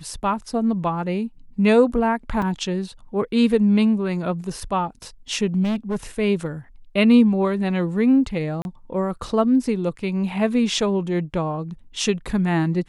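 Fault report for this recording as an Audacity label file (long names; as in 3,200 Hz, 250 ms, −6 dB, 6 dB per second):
2.420000	2.420000	drop-out 3.7 ms
5.630000	5.960000	clipping −20 dBFS
8.620000	8.650000	drop-out 31 ms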